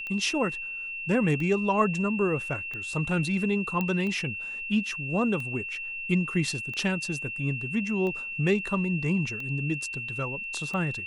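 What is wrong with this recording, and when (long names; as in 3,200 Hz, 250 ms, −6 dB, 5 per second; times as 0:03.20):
scratch tick 45 rpm −24 dBFS
whistle 2,700 Hz −33 dBFS
0:03.81: click −16 dBFS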